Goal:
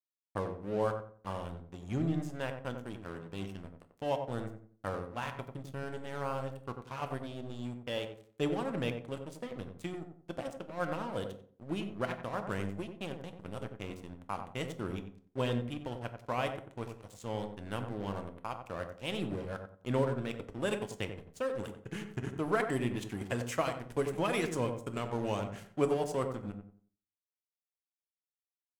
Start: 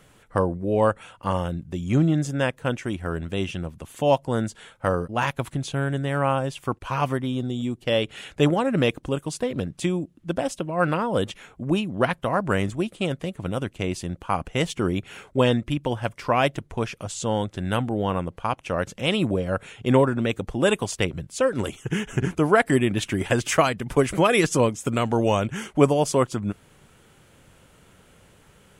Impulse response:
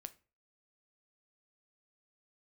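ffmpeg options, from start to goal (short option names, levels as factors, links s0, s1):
-filter_complex "[0:a]aeval=exprs='sgn(val(0))*max(abs(val(0))-0.0237,0)':c=same,asplit=2[s0][s1];[s1]adelay=91,lowpass=f=1000:p=1,volume=0.562,asplit=2[s2][s3];[s3]adelay=91,lowpass=f=1000:p=1,volume=0.31,asplit=2[s4][s5];[s5]adelay=91,lowpass=f=1000:p=1,volume=0.31,asplit=2[s6][s7];[s7]adelay=91,lowpass=f=1000:p=1,volume=0.31[s8];[s0][s2][s4][s6][s8]amix=inputs=5:normalize=0[s9];[1:a]atrim=start_sample=2205,asetrate=34839,aresample=44100[s10];[s9][s10]afir=irnorm=-1:irlink=0,volume=0.398"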